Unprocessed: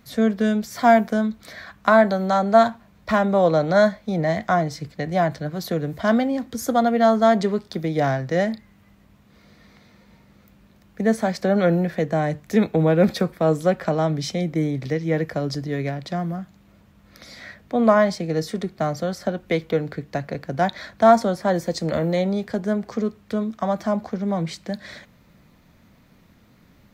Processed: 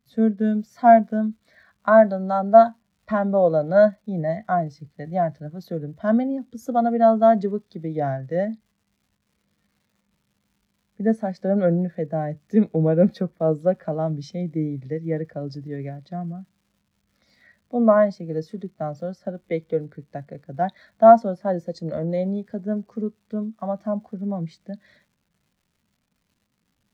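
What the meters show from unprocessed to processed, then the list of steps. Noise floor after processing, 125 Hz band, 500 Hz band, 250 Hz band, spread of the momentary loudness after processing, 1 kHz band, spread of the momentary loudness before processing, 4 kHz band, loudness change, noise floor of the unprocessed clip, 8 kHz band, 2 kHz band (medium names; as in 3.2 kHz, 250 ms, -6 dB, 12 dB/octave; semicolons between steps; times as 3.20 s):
-73 dBFS, -2.5 dB, +0.5 dB, -1.5 dB, 17 LU, 0.0 dB, 12 LU, under -15 dB, 0.0 dB, -55 dBFS, under -15 dB, -7.0 dB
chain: crackle 290 per s -31 dBFS; spectral contrast expander 1.5:1; trim +1.5 dB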